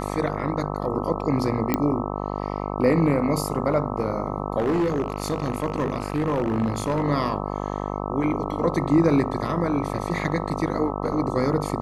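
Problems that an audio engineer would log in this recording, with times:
buzz 50 Hz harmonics 26 -29 dBFS
1.74 s: pop -7 dBFS
4.58–7.04 s: clipped -18.5 dBFS

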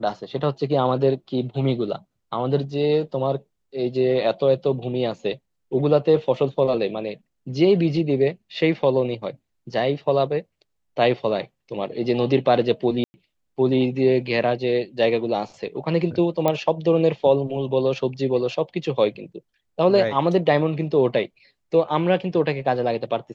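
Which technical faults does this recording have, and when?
13.04–13.14 s: dropout 100 ms
16.48 s: pop -8 dBFS

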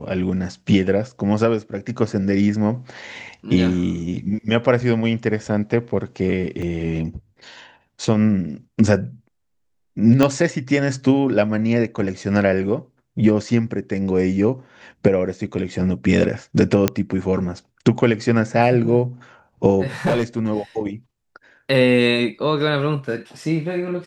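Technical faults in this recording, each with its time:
6.62 s: dropout 3.9 ms
10.23 s: pop -4 dBFS
16.88 s: pop -2 dBFS
20.05–20.50 s: clipped -14 dBFS

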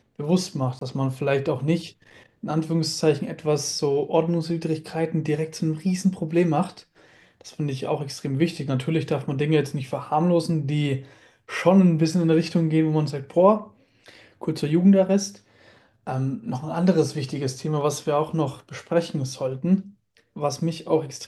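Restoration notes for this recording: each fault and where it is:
0.79–0.81 s: dropout 23 ms

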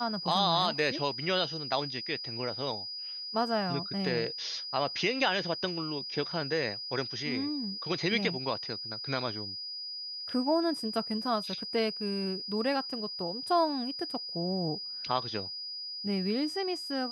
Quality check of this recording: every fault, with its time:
whine 4.9 kHz -37 dBFS

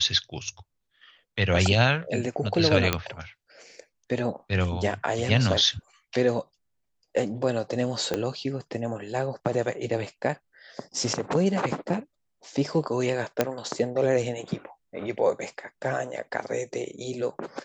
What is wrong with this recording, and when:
2.93 s: pop -6 dBFS
8.14 s: pop -12 dBFS
13.41 s: pop -7 dBFS

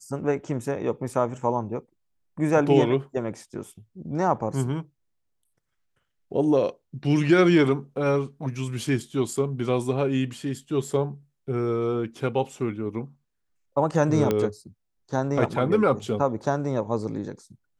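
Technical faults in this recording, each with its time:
14.31 s: pop -11 dBFS

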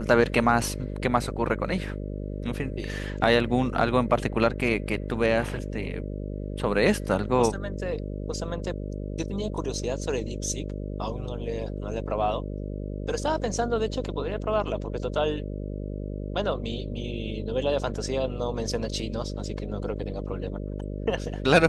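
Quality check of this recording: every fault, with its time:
buzz 50 Hz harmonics 12 -33 dBFS

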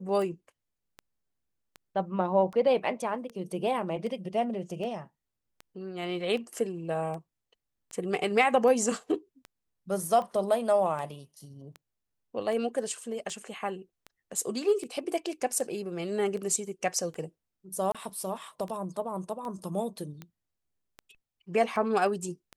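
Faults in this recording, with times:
tick 78 rpm
17.92–17.95 s: dropout 26 ms

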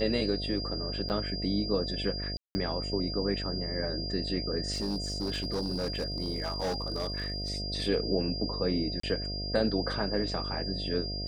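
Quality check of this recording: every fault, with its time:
buzz 50 Hz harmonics 14 -37 dBFS
whine 4.8 kHz -36 dBFS
1.09–1.10 s: dropout 9 ms
2.37–2.55 s: dropout 180 ms
4.73–7.50 s: clipped -27.5 dBFS
9.00–9.03 s: dropout 34 ms

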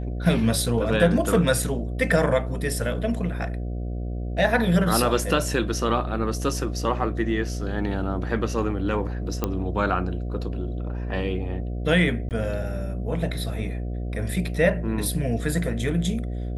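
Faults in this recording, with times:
buzz 60 Hz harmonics 12 -29 dBFS
9.44 s: pop -10 dBFS
12.29–12.31 s: dropout 18 ms

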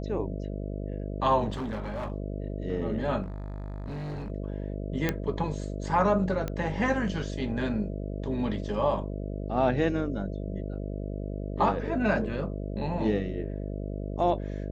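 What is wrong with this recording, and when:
buzz 50 Hz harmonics 13 -34 dBFS
1.52–2.12 s: clipped -29.5 dBFS
3.22–4.30 s: clipped -32.5 dBFS
5.09 s: pop -12 dBFS
6.48 s: pop -18 dBFS

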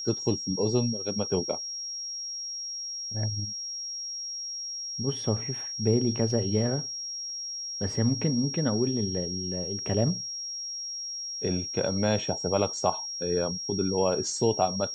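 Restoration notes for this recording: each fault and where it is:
whine 5.6 kHz -33 dBFS

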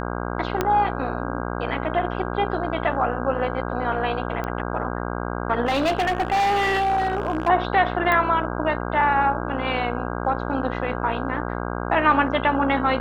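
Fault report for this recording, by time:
buzz 60 Hz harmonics 27 -28 dBFS
0.61 s: pop -7 dBFS
4.44 s: pop -16 dBFS
5.65–7.49 s: clipped -17.5 dBFS
8.12 s: pop -10 dBFS

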